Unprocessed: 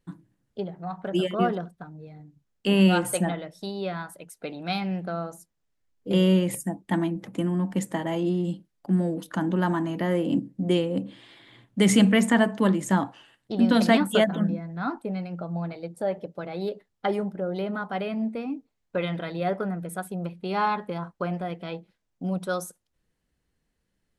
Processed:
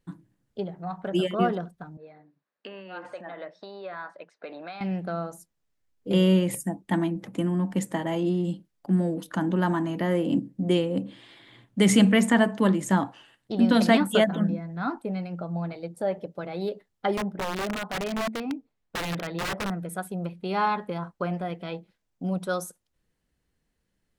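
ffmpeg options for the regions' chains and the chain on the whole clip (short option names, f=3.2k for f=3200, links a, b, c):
-filter_complex "[0:a]asettb=1/sr,asplit=3[a][b][c];[a]atrim=end=1.974[d];[b]atrim=start=1.97:end=4.81,asetpts=PTS-STARTPTS,afade=t=in:d=0.004:c=qsin,afade=t=out:st=2.836:d=0.004:c=qsin,acompressor=threshold=-33dB:ratio=20:attack=3.2:release=140:knee=1:detection=peak,highpass=360,equalizer=f=590:t=q:w=4:g=5,equalizer=f=1.1k:t=q:w=4:g=6,equalizer=f=1.7k:t=q:w=4:g=6,equalizer=f=3.2k:t=q:w=4:g=-6,lowpass=f=4.2k:w=0.5412,lowpass=f=4.2k:w=1.3066[e];[c]atrim=start=4.806[f];[d][e]acrossfade=d=0.004:c1=hsin:c2=qsin[g];[g][f]acrossfade=d=0.004:c1=qsin:c2=hsin,asettb=1/sr,asplit=3[h][i][j];[h]atrim=end=17.174[k];[i]atrim=start=17.17:end=19.7,asetpts=PTS-STARTPTS,afade=t=in:d=0.004:c=qsin,afade=t=out:st=2.526:d=0.004:c=qsin,bandreject=f=50:t=h:w=6,bandreject=f=100:t=h:w=6,bandreject=f=150:t=h:w=6,aeval=exprs='(mod(15*val(0)+1,2)-1)/15':c=same,aemphasis=mode=reproduction:type=cd[l];[j]atrim=start=19.696[m];[k][l]acrossfade=d=0.004:c1=hsin:c2=qsin[n];[n][m]acrossfade=d=0.004:c1=qsin:c2=hsin"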